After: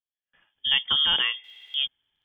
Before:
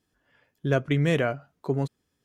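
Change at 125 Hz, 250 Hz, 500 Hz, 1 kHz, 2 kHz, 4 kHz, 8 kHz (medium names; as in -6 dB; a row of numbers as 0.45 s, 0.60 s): under -25 dB, -23.0 dB, -23.5 dB, -2.5 dB, +3.0 dB, +22.0 dB, under -20 dB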